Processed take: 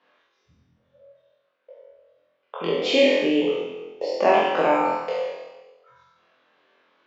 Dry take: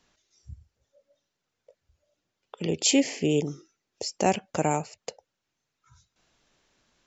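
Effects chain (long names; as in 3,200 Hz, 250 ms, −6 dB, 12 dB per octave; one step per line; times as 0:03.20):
peak hold with a decay on every bin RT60 1.14 s
loudspeaker in its box 320–3,400 Hz, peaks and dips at 520 Hz +6 dB, 1,100 Hz +7 dB, 1,600 Hz +4 dB
flutter between parallel walls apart 4 metres, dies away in 0.6 s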